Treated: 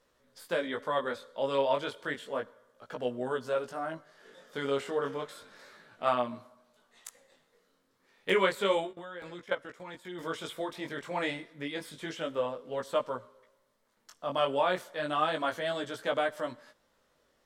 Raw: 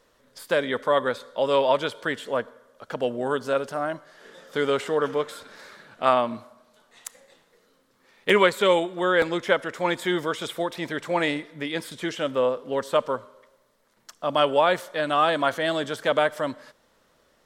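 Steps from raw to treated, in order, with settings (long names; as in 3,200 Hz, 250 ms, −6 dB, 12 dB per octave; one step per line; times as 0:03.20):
0:08.91–0:10.19: output level in coarse steps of 17 dB
chorus effect 0.31 Hz, delay 16 ms, depth 6 ms
level −5 dB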